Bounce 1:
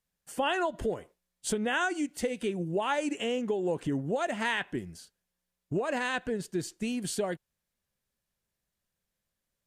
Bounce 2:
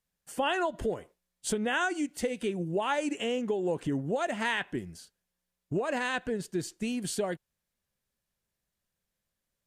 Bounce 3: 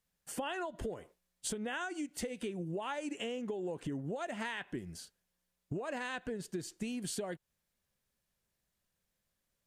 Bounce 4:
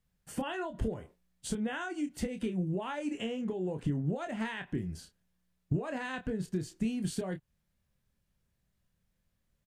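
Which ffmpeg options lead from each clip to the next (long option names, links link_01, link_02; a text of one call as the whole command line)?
ffmpeg -i in.wav -af anull out.wav
ffmpeg -i in.wav -af "acompressor=threshold=-37dB:ratio=6,volume=1dB" out.wav
ffmpeg -i in.wav -filter_complex "[0:a]bass=frequency=250:gain=11,treble=frequency=4000:gain=-4,asplit=2[link_01][link_02];[link_02]adelay=27,volume=-7.5dB[link_03];[link_01][link_03]amix=inputs=2:normalize=0" out.wav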